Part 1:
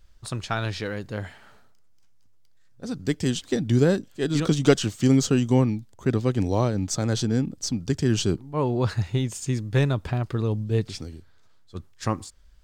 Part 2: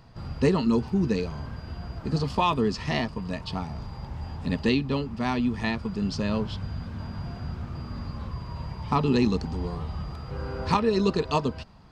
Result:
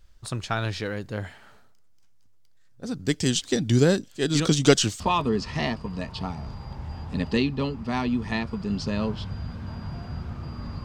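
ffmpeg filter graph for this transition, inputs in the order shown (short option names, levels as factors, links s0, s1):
-filter_complex "[0:a]asettb=1/sr,asplit=3[s0][s1][s2];[s0]atrim=end=3.084[s3];[s1]atrim=start=3.08:end=5,asetpts=PTS-STARTPTS,afade=t=in:d=0.004:c=qsin,afade=t=out:st=1.916:d=0.004:c=qsin,equalizer=f=5600:w=0.48:g=7.5[s4];[s2]atrim=start=4.996[s5];[s3][s4]acrossfade=d=0.004:c1=hsin:c2=qsin[s6];[s6][s5]acrossfade=d=0.004:c1=qsin:c2=hsin,apad=whole_dur=10.84,atrim=end=10.84,atrim=end=5.002[s7];[1:a]atrim=start=2.318:end=8.16[s8];[s7][s8]acrossfade=d=0.004:c1=hsin:c2=hsin"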